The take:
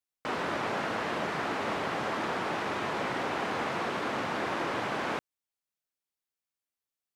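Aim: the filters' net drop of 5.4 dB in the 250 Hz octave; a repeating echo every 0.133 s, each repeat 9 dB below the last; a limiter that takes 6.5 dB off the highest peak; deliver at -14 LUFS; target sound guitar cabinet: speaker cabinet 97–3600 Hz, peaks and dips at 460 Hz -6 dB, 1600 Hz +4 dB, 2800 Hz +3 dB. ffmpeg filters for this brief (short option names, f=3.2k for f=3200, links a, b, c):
-af "equalizer=f=250:t=o:g=-6.5,alimiter=level_in=2.5dB:limit=-24dB:level=0:latency=1,volume=-2.5dB,highpass=97,equalizer=f=460:t=q:w=4:g=-6,equalizer=f=1.6k:t=q:w=4:g=4,equalizer=f=2.8k:t=q:w=4:g=3,lowpass=f=3.6k:w=0.5412,lowpass=f=3.6k:w=1.3066,aecho=1:1:133|266|399|532:0.355|0.124|0.0435|0.0152,volume=20dB"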